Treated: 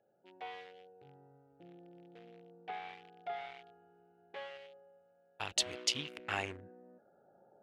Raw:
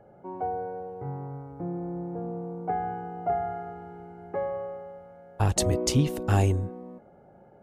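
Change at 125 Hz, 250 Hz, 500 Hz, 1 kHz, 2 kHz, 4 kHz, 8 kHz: −28.0, −21.5, −17.0, −14.0, −1.5, +0.5, −7.5 decibels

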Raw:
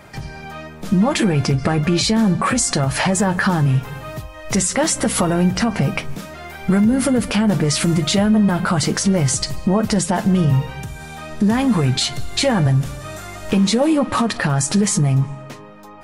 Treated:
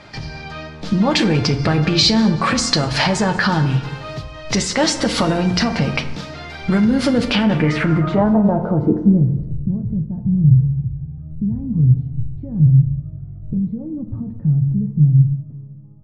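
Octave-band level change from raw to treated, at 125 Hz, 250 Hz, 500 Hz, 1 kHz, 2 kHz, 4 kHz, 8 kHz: +3.0, 0.0, −1.0, −1.0, +0.5, +2.0, −7.0 decibels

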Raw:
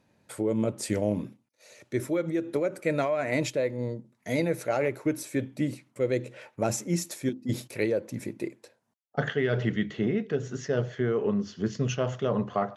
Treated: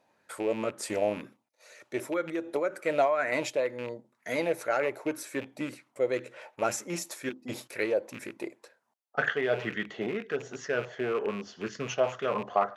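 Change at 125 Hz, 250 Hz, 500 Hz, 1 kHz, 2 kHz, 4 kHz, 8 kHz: −13.5, −7.0, −1.0, +3.5, +2.5, −0.5, −2.5 decibels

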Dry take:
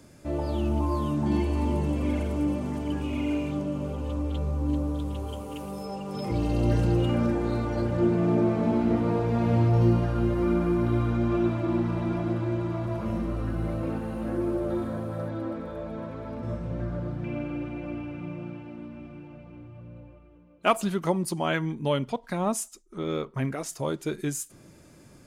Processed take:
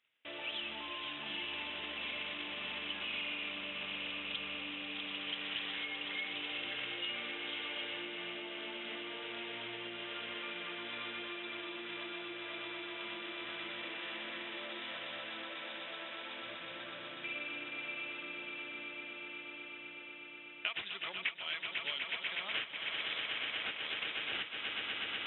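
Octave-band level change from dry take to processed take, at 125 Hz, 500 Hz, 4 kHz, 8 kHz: −36.0 dB, −19.5 dB, +7.5 dB, can't be measured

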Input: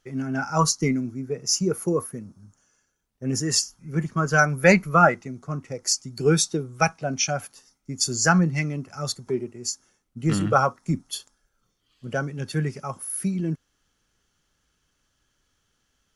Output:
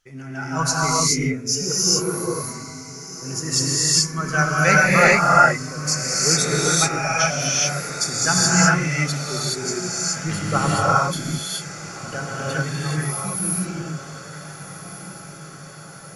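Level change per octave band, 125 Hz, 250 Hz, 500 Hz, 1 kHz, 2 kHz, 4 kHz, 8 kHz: +3.0, +0.5, +1.0, +5.0, +6.5, +8.0, +8.0 decibels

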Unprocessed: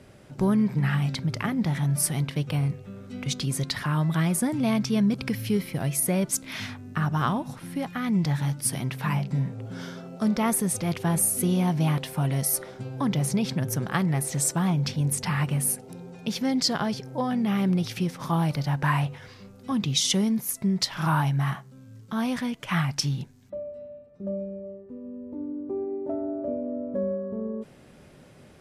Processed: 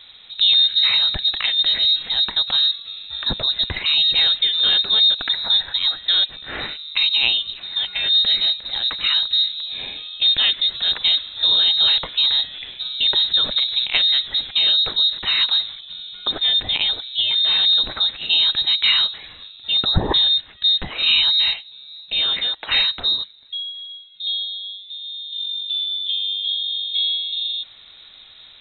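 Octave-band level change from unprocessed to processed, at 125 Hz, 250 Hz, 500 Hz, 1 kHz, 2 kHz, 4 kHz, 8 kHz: −13.0 dB, −15.5 dB, −7.0 dB, −4.0 dB, +8.0 dB, +22.5 dB, below −40 dB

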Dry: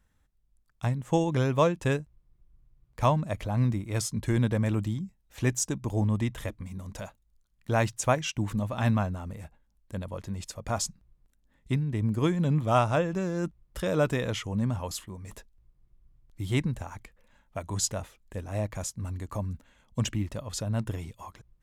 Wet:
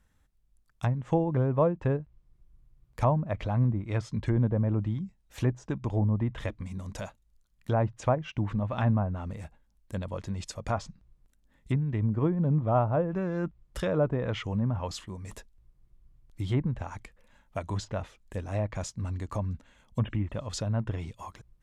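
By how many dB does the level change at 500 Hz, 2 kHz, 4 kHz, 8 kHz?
−0.5, −5.5, −6.5, −12.0 decibels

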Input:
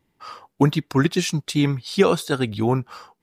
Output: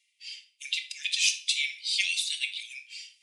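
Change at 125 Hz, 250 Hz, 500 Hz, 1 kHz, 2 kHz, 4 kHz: below −40 dB, below −40 dB, below −40 dB, below −40 dB, 0.0 dB, +4.0 dB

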